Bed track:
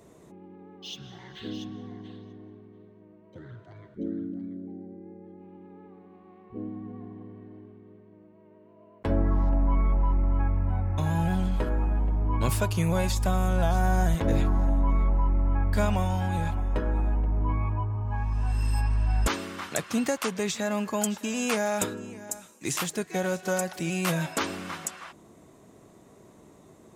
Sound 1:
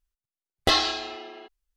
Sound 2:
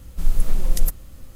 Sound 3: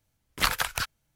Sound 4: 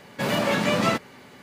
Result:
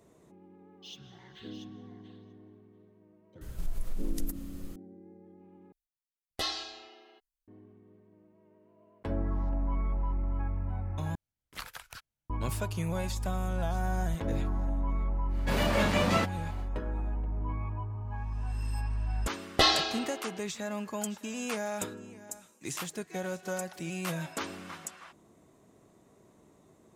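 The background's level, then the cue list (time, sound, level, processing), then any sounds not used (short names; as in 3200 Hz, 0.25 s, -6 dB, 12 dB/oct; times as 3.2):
bed track -7.5 dB
3.41 add 2 -2.5 dB + compressor 3:1, threshold -28 dBFS
5.72 replace with 1 -15 dB + high shelf 5200 Hz +10.5 dB
11.15 replace with 3 -17.5 dB
15.28 add 4 -5 dB, fades 0.10 s
18.92 add 1 -2 dB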